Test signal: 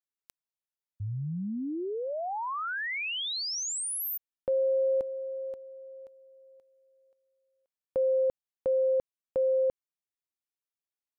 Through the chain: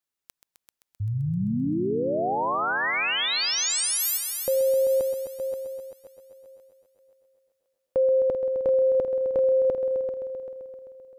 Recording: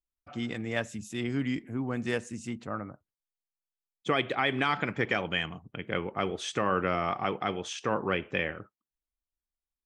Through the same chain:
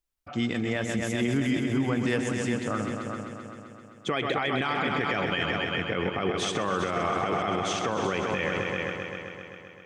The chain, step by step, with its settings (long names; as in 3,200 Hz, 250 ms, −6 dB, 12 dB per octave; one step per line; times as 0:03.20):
on a send: echo machine with several playback heads 130 ms, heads all three, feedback 55%, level −11 dB
on the sum: brickwall limiter −23.5 dBFS
level +6.5 dB